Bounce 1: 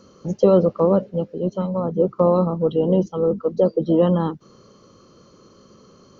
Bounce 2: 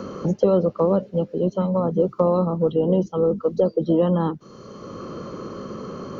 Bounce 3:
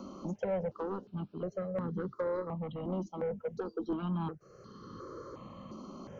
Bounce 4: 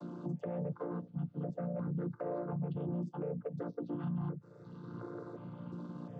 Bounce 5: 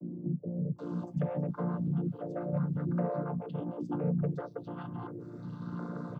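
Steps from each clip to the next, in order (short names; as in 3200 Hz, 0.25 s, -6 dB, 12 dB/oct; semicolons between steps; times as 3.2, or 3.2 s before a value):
three-band squash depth 70%; gain -1.5 dB
soft clip -15.5 dBFS, distortion -14 dB; step phaser 2.8 Hz 460–2400 Hz; gain -9 dB
chord vocoder major triad, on A#2; limiter -33 dBFS, peak gain reduction 9 dB; gain +3 dB
bands offset in time lows, highs 0.78 s, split 400 Hz; gain +6 dB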